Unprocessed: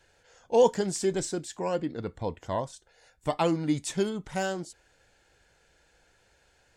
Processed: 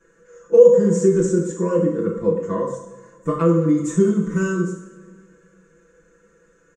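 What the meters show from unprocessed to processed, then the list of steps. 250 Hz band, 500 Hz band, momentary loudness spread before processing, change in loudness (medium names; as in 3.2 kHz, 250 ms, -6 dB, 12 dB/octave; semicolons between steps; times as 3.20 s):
+12.0 dB, +11.5 dB, 13 LU, +11.0 dB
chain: comb 6 ms, depth 99%; two-slope reverb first 0.72 s, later 2.4 s, DRR -1 dB; compression 2.5:1, threshold -19 dBFS, peak gain reduction 9 dB; FFT filter 120 Hz 0 dB, 190 Hz +11 dB, 310 Hz +6 dB, 490 Hz +12 dB, 780 Hz -21 dB, 1.1 kHz +10 dB, 2.4 kHz -8 dB, 4.6 kHz -19 dB, 6.7 kHz +3 dB, 10 kHz -11 dB; trim -2 dB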